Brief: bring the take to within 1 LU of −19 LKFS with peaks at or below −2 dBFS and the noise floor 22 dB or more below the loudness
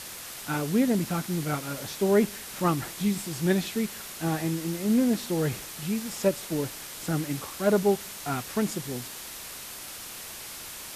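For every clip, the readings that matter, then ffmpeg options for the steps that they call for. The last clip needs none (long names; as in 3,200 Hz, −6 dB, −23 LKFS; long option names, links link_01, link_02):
background noise floor −41 dBFS; target noise floor −51 dBFS; integrated loudness −28.5 LKFS; sample peak −10.5 dBFS; target loudness −19.0 LKFS
→ -af "afftdn=noise_reduction=10:noise_floor=-41"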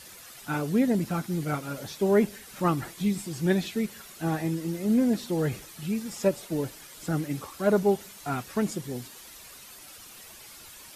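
background noise floor −48 dBFS; target noise floor −51 dBFS
→ -af "afftdn=noise_reduction=6:noise_floor=-48"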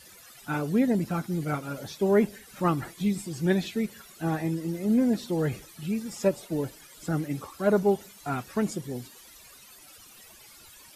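background noise floor −52 dBFS; integrated loudness −28.5 LKFS; sample peak −10.5 dBFS; target loudness −19.0 LKFS
→ -af "volume=9.5dB,alimiter=limit=-2dB:level=0:latency=1"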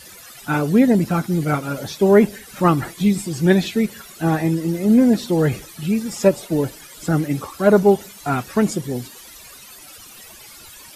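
integrated loudness −19.0 LKFS; sample peak −2.0 dBFS; background noise floor −42 dBFS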